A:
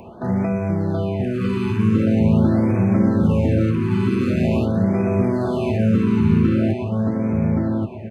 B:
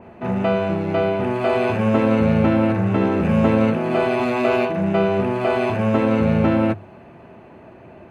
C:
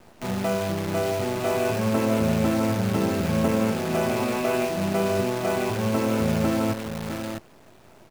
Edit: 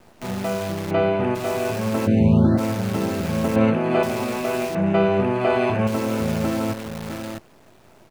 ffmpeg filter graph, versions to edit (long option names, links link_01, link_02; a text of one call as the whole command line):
ffmpeg -i take0.wav -i take1.wav -i take2.wav -filter_complex "[1:a]asplit=3[link_01][link_02][link_03];[2:a]asplit=5[link_04][link_05][link_06][link_07][link_08];[link_04]atrim=end=0.912[link_09];[link_01]atrim=start=0.908:end=1.352[link_10];[link_05]atrim=start=1.348:end=2.08[link_11];[0:a]atrim=start=2.06:end=2.59[link_12];[link_06]atrim=start=2.57:end=3.562[link_13];[link_02]atrim=start=3.558:end=4.032[link_14];[link_07]atrim=start=4.028:end=4.752[link_15];[link_03]atrim=start=4.748:end=5.872[link_16];[link_08]atrim=start=5.868[link_17];[link_09][link_10]acrossfade=duration=0.004:curve1=hsin:curve2=hsin[link_18];[link_18][link_11]acrossfade=duration=0.004:curve1=hsin:curve2=hsin[link_19];[link_19][link_12]acrossfade=duration=0.02:curve1=tri:curve2=tri[link_20];[link_20][link_13]acrossfade=duration=0.02:curve1=tri:curve2=tri[link_21];[link_21][link_14]acrossfade=duration=0.004:curve1=hsin:curve2=hsin[link_22];[link_22][link_15]acrossfade=duration=0.004:curve1=hsin:curve2=hsin[link_23];[link_23][link_16]acrossfade=duration=0.004:curve1=hsin:curve2=hsin[link_24];[link_24][link_17]acrossfade=duration=0.004:curve1=hsin:curve2=hsin" out.wav